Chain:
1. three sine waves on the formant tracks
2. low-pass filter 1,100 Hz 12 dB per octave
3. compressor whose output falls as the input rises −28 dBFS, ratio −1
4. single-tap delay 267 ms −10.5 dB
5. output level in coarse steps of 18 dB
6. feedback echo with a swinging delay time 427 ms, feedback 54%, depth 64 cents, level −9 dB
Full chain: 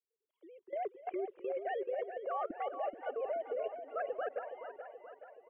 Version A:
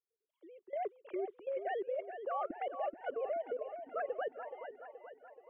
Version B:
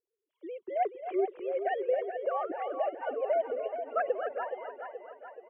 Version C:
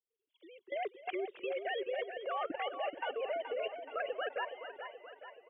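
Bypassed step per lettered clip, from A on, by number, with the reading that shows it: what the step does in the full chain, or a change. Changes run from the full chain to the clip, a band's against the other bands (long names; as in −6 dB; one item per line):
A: 4, change in momentary loudness spread +1 LU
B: 5, change in integrated loudness +6.5 LU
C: 2, 2 kHz band +7.5 dB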